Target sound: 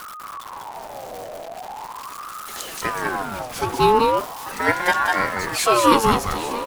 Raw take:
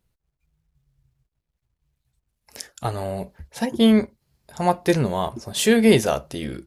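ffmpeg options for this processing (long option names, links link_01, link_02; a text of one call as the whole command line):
ffmpeg -i in.wav -af "aeval=exprs='val(0)+0.5*0.0355*sgn(val(0))':channel_layout=same,aecho=1:1:197|841:0.668|0.211,aeval=exprs='val(0)*sin(2*PI*940*n/s+940*0.35/0.4*sin(2*PI*0.4*n/s))':channel_layout=same,volume=1.5dB" out.wav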